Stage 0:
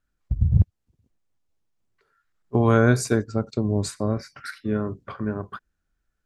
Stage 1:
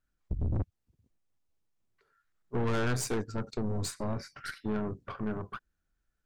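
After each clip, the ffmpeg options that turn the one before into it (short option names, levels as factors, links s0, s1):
-af "aeval=exprs='(tanh(20*val(0)+0.55)-tanh(0.55))/20':c=same,volume=0.841"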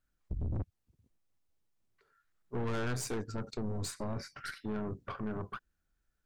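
-af "alimiter=level_in=1.78:limit=0.0631:level=0:latency=1:release=45,volume=0.562"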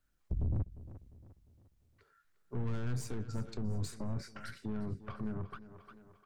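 -filter_complex "[0:a]aecho=1:1:351|702|1053|1404:0.141|0.0607|0.0261|0.0112,acrossover=split=220[s0][s1];[s1]acompressor=threshold=0.00355:ratio=4[s2];[s0][s2]amix=inputs=2:normalize=0,volume=1.33"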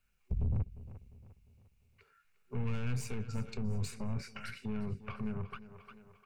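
-af "superequalizer=6b=0.251:8b=0.708:12b=3.16,volume=1.12"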